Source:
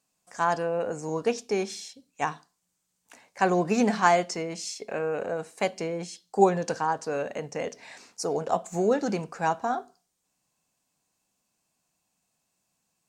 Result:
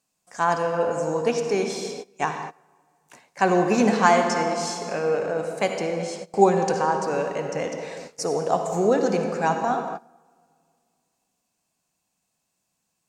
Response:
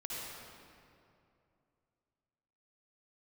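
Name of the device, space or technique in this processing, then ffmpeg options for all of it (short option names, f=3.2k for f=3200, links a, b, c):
keyed gated reverb: -filter_complex "[0:a]asplit=3[a][b][c];[1:a]atrim=start_sample=2205[d];[b][d]afir=irnorm=-1:irlink=0[e];[c]apad=whole_len=577094[f];[e][f]sidechaingate=range=-21dB:threshold=-51dB:ratio=16:detection=peak,volume=-2dB[g];[a][g]amix=inputs=2:normalize=0"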